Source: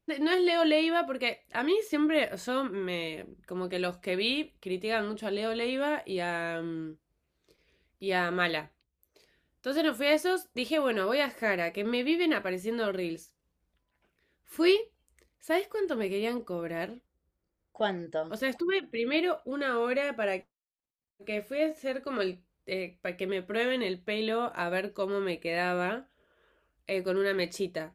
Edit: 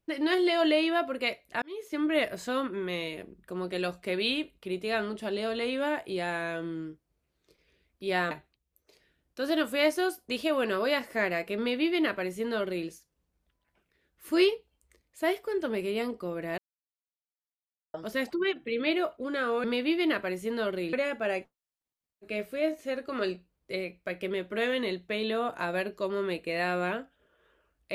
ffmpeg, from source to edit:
-filter_complex "[0:a]asplit=7[a][b][c][d][e][f][g];[a]atrim=end=1.62,asetpts=PTS-STARTPTS,afade=t=out:st=1.616:d=0.004:c=hsin[h];[b]atrim=start=1.62:end=8.312,asetpts=PTS-STARTPTS,afade=t=in:d=0.53[i];[c]atrim=start=8.578:end=16.85,asetpts=PTS-STARTPTS,afade=t=out:st=8.268:d=0.004:c=hsin[j];[d]atrim=start=16.85:end=18.21,asetpts=PTS-STARTPTS,volume=0[k];[e]atrim=start=18.21:end=19.912,asetpts=PTS-STARTPTS,afade=t=in:d=0.004:c=hsin[l];[f]atrim=start=11.848:end=13.142[m];[g]atrim=start=19.908[n];[h][i]concat=n=2:v=0:a=1[o];[j][k][l]concat=n=3:v=0:a=1[p];[o][p]acrossfade=d=0.004:c1=hsin:c2=hsin[q];[q][m]acrossfade=d=0.004:c1=hsin:c2=hsin[r];[r][n]acrossfade=d=0.004:c1=hsin:c2=hsin"

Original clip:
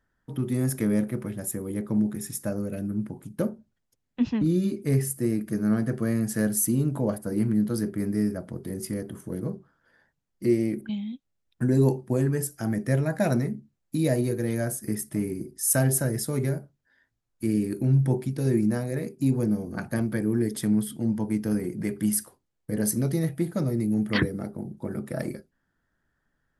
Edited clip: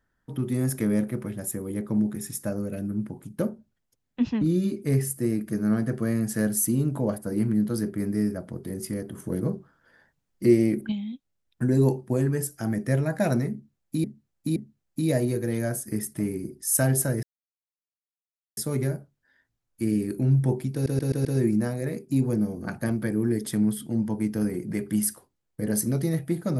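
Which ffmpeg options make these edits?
-filter_complex "[0:a]asplit=10[a][b][c][d][e][f][g][h][i][j];[a]atrim=end=9.182[k];[b]atrim=start=9.178:end=10.922,asetpts=PTS-STARTPTS,volume=4dB[l];[c]atrim=start=10.918:end=14.042[m];[d]atrim=start=13.518:end=14.042[n];[e]atrim=start=13.518:end=16.19,asetpts=PTS-STARTPTS,afade=t=out:st=2.668:d=0.004:c=hsin,apad=pad_dur=1.34[o];[f]atrim=start=16.19:end=18.482,asetpts=PTS-STARTPTS,afade=t=in:d=0.004:c=hsin[p];[g]atrim=start=18.348:end=18.482[q];[h]atrim=start=18.348:end=18.482[r];[i]atrim=start=18.348:end=18.482[s];[j]atrim=start=18.348[t];[k][l]acrossfade=d=0.004:c1=hsin:c2=hsin[u];[u][m]acrossfade=d=0.004:c1=hsin:c2=hsin[v];[v][n]acrossfade=d=0.004:c1=hsin:c2=hsin[w];[o][p]concat=n=2:v=0:a=1[x];[w][x]acrossfade=d=0.004:c1=hsin:c2=hsin[y];[y][q]acrossfade=d=0.004:c1=hsin:c2=hsin[z];[z][r]acrossfade=d=0.004:c1=hsin:c2=hsin[aa];[aa][s]acrossfade=d=0.004:c1=hsin:c2=hsin[ab];[ab][t]acrossfade=d=0.004:c1=hsin:c2=hsin"

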